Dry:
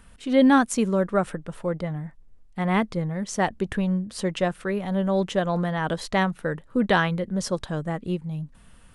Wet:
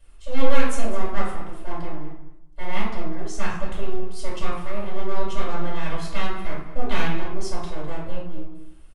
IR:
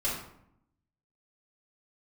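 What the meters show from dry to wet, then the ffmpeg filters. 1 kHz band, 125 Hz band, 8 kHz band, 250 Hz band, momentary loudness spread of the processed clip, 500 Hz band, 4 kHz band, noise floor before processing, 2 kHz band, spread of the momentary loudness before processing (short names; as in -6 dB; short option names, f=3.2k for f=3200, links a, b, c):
-4.0 dB, -5.5 dB, -4.0 dB, -9.5 dB, 11 LU, -5.0 dB, -2.5 dB, -52 dBFS, -4.5 dB, 11 LU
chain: -filter_complex "[0:a]acrossover=split=100|2400[a][b][c];[b]aeval=exprs='abs(val(0))':c=same[d];[a][d][c]amix=inputs=3:normalize=0,asplit=2[e][f];[f]adelay=204.1,volume=-13dB,highshelf=f=4k:g=-4.59[g];[e][g]amix=inputs=2:normalize=0[h];[1:a]atrim=start_sample=2205[i];[h][i]afir=irnorm=-1:irlink=0,volume=-9.5dB"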